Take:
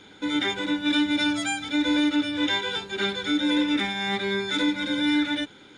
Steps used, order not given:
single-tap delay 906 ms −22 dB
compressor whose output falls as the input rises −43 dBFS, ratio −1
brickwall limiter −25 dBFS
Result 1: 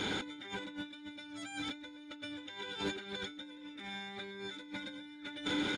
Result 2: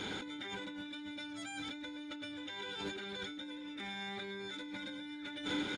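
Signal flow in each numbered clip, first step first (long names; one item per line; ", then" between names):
single-tap delay, then compressor whose output falls as the input rises, then brickwall limiter
single-tap delay, then brickwall limiter, then compressor whose output falls as the input rises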